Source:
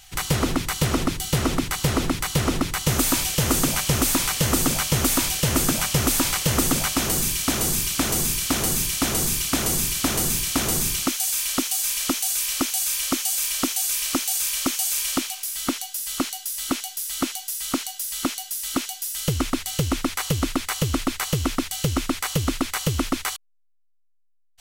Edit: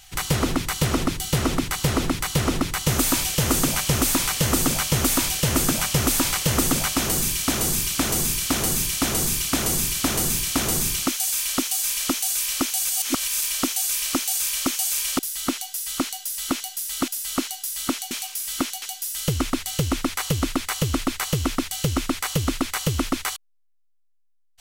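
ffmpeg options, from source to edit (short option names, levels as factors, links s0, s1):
-filter_complex "[0:a]asplit=7[s0][s1][s2][s3][s4][s5][s6];[s0]atrim=end=12.852[s7];[s1]atrim=start=12.848:end=13.422,asetpts=PTS-STARTPTS,areverse[s8];[s2]atrim=start=13.418:end=15.192[s9];[s3]atrim=start=16.928:end=18.822[s10];[s4]atrim=start=15.898:end=16.932[s11];[s5]atrim=start=15.188:end=15.902[s12];[s6]atrim=start=18.818[s13];[s7][s8]acrossfade=d=0.004:c1=hsin:c2=hsin[s14];[s14][s9]acrossfade=d=0.004:c1=hsin:c2=hsin[s15];[s15][s10]acrossfade=d=0.004:c1=hsin:c2=hsin[s16];[s16][s11]acrossfade=d=0.004:c1=hsin:c2=hsin[s17];[s17][s12]acrossfade=d=0.004:c1=hsin:c2=hsin[s18];[s18][s13]acrossfade=d=0.004:c1=hsin:c2=hsin"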